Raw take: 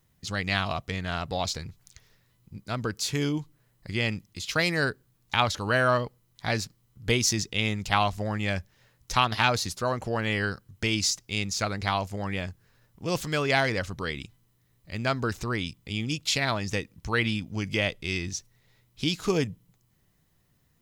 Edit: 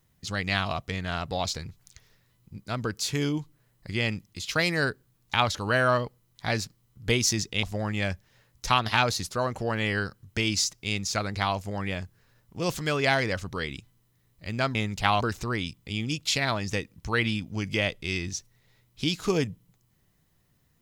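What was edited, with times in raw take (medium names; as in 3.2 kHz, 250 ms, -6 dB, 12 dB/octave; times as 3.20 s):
7.63–8.09 s: move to 15.21 s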